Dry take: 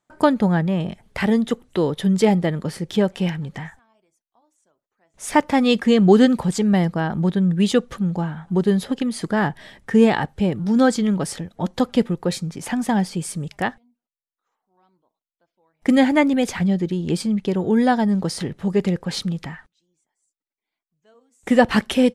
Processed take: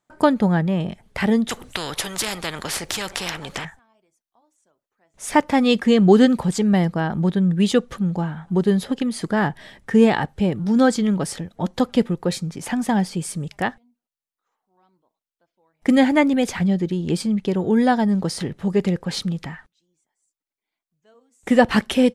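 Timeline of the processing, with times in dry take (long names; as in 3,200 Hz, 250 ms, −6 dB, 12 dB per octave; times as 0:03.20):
0:01.49–0:03.65: every bin compressed towards the loudest bin 4 to 1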